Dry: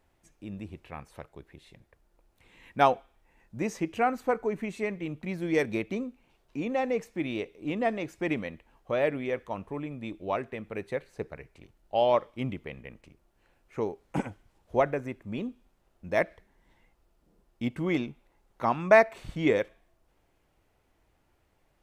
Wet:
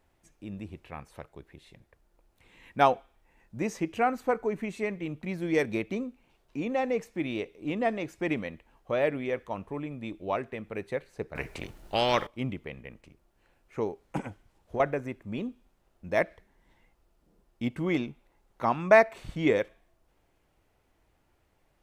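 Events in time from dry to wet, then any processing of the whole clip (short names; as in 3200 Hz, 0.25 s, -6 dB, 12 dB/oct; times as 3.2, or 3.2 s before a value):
11.35–12.27 spectral compressor 2:1
14.17–14.8 compressor, threshold -29 dBFS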